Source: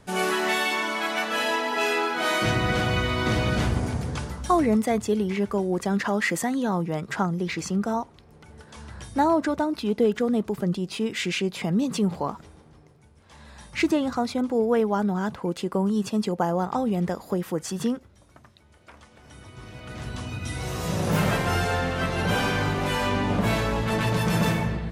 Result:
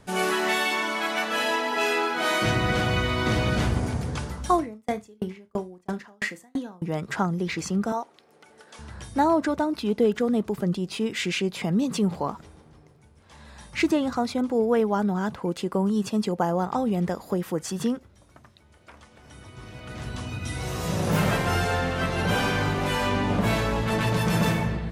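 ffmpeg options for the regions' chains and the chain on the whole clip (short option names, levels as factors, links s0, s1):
-filter_complex "[0:a]asettb=1/sr,asplit=3[s0][s1][s2];[s0]atrim=end=4.554[s3];[s1]atrim=start=4.55:end=6.82,asetpts=PTS-STARTPTS,afade=t=in:d=0.004:c=qsin,afade=t=out:st=2.266:d=0.004:c=qsin,asplit=2[s4][s5];[s5]adelay=33,volume=0.316[s6];[s4][s6]amix=inputs=2:normalize=0,atrim=end_sample=100107,aecho=1:1:72:0.168,atrim=end_sample=100107,aeval=exprs='val(0)*pow(10,-40*if(lt(mod(3*n/s,1),2*abs(3)/1000),1-mod(3*n/s,1)/(2*abs(3)/1000),(mod(3*n/s,1)-2*abs(3)/1000)/(1-2*abs(3)/1000))/20)':c=same[s7];[s2]atrim=start=6.816[s8];[s3][s7]acrossfade=d=0.004:c1=hsin:c2=qsin[s9];[s9][s8]acrossfade=d=0.004:c1=qsin:c2=hsin,asettb=1/sr,asplit=3[s10][s11][s12];[s10]atrim=end=7.924[s13];[s11]atrim=start=7.92:end=8.79,asetpts=PTS-STARTPTS,afade=t=in:d=0.004:c=qsin,afade=t=out:st=0.866:d=0.004:c=qsin,highpass=380,bandreject=f=1000:w=10[s14];[s12]atrim=start=8.786[s15];[s13][s14]acrossfade=d=0.004:c1=hsin:c2=qsin[s16];[s16][s15]acrossfade=d=0.004:c1=qsin:c2=hsin"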